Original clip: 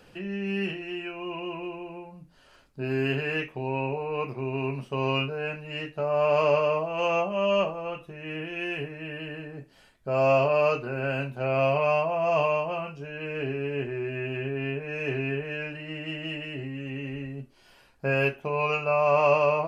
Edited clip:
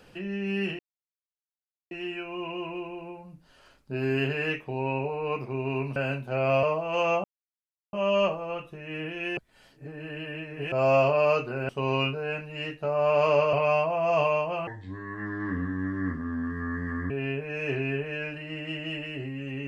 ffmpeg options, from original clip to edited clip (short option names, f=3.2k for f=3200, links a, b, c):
-filter_complex "[0:a]asplit=11[a][b][c][d][e][f][g][h][i][j][k];[a]atrim=end=0.79,asetpts=PTS-STARTPTS,afade=t=out:st=0.786:d=0.004:c=hsin,apad=pad_dur=1.12[l];[b]atrim=start=0.79:end=4.842,asetpts=PTS-STARTPTS,afade=t=in:d=0.004:c=hsin[m];[c]atrim=start=11.048:end=11.722[n];[d]atrim=start=6.678:end=7.29,asetpts=PTS-STARTPTS,afade=t=out:st=0.608:d=0.004:c=hsin,apad=pad_dur=0.69[o];[e]atrim=start=7.29:end=8.732,asetpts=PTS-STARTPTS,afade=t=in:d=0.004:c=hsin[p];[f]atrim=start=8.728:end=10.082,asetpts=PTS-STARTPTS,areverse[q];[g]atrim=start=10.078:end=11.052[r];[h]atrim=start=4.838:end=6.682[s];[i]atrim=start=11.718:end=12.864[t];[j]atrim=start=12.86:end=14.49,asetpts=PTS-STARTPTS,asetrate=29547,aresample=44100,atrim=end_sample=107288,asetpts=PTS-STARTPTS[u];[k]atrim=start=14.486[v];[l][m]concat=n=2:v=0:a=1[w];[w][n]acrossfade=d=0.004:c1=hsin:c2=hsin[x];[o][p]concat=n=2:v=0:a=1[y];[x][y]acrossfade=d=0.004:c1=hsin:c2=hsin[z];[z][q]acrossfade=d=0.004:c1=hsin:c2=hsin[aa];[aa][r]acrossfade=d=0.004:c1=hsin:c2=hsin[ab];[ab][s]acrossfade=d=0.004:c1=hsin:c2=hsin[ac];[ac][t]acrossfade=d=0.004:c1=hsin:c2=hsin[ad];[ad][u]acrossfade=d=0.004:c1=hsin:c2=hsin[ae];[ae][v]acrossfade=d=0.004:c1=hsin:c2=hsin"